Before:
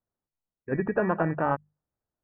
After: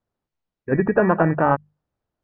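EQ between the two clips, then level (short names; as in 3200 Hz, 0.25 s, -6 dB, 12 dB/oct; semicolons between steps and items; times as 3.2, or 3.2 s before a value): air absorption 150 m; +8.5 dB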